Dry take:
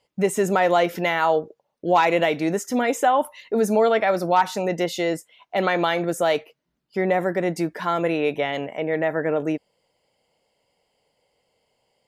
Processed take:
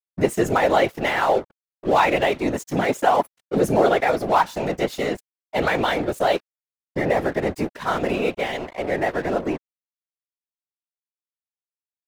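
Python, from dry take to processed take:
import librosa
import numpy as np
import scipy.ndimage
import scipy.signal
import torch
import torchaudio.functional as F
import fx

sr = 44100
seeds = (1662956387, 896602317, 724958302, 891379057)

y = np.sign(x) * np.maximum(np.abs(x) - 10.0 ** (-35.0 / 20.0), 0.0)
y = fx.whisperise(y, sr, seeds[0])
y = F.gain(torch.from_numpy(y), 1.5).numpy()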